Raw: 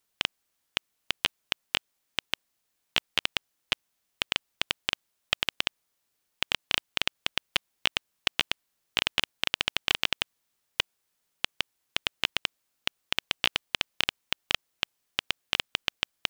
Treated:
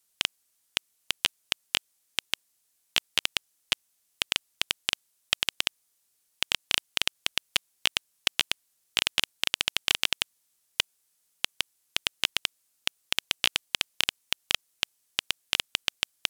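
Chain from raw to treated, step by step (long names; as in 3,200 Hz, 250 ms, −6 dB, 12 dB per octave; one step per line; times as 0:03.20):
parametric band 9,900 Hz +12.5 dB 2 octaves
level −3 dB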